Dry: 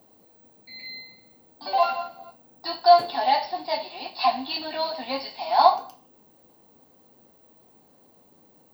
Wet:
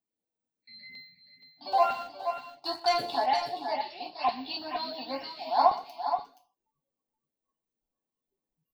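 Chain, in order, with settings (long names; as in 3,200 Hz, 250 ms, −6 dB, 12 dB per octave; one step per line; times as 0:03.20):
noise reduction from a noise print of the clip's start 29 dB
0:01.72–0:03.26: leveller curve on the samples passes 1
auto-filter notch saw up 2.1 Hz 480–5,000 Hz
on a send: multi-tap delay 122/472/479 ms −19.5/−10.5/−11.5 dB
on the sum: level −5.5 dB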